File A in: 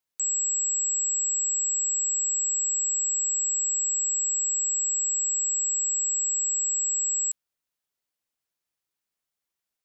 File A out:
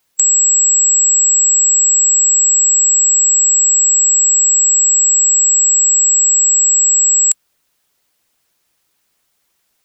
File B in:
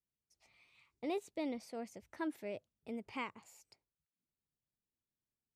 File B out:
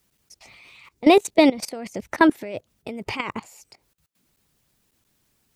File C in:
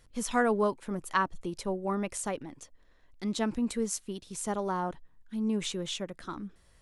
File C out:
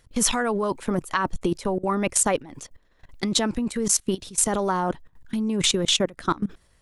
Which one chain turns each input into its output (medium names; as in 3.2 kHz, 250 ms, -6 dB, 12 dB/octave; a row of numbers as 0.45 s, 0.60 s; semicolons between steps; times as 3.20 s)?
level held to a coarse grid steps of 19 dB; harmonic-percussive split percussive +5 dB; peak normalisation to -2 dBFS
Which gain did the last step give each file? +27.0 dB, +24.0 dB, +14.0 dB